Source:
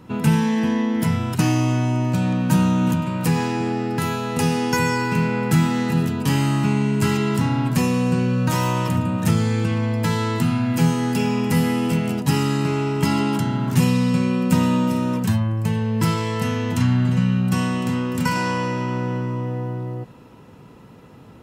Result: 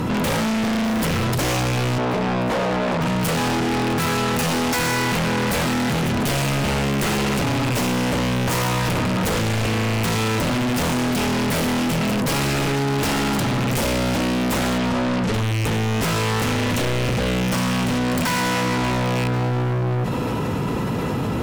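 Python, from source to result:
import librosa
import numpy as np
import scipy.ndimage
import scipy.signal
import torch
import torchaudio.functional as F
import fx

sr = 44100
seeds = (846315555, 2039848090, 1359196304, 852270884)

y = fx.rattle_buzz(x, sr, strikes_db=-22.0, level_db=-22.0)
y = fx.fold_sine(y, sr, drive_db=13, ceiling_db=-5.5)
y = fx.bandpass_q(y, sr, hz=660.0, q=0.76, at=(1.98, 3.01))
y = 10.0 ** (-20.5 / 20.0) * np.tanh(y / 10.0 ** (-20.5 / 20.0))
y = fx.dmg_noise_colour(y, sr, seeds[0], colour='pink', level_db=-39.0, at=(0.83, 1.24), fade=0.02)
y = fx.air_absorb(y, sr, metres=78.0, at=(14.78, 15.34))
y = y + 10.0 ** (-23.0 / 20.0) * np.pad(y, (int(1085 * sr / 1000.0), 0))[:len(y)]
y = fx.env_flatten(y, sr, amount_pct=70)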